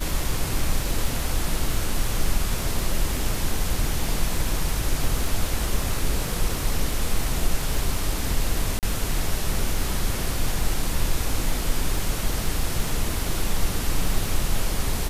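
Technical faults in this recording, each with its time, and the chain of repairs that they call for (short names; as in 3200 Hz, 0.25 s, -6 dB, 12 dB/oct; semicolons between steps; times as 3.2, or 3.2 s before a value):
crackle 27/s -29 dBFS
8.79–8.83 gap 38 ms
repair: de-click; interpolate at 8.79, 38 ms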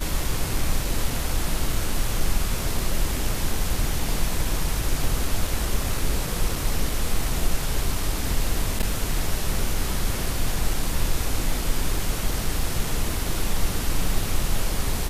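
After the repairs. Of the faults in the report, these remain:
none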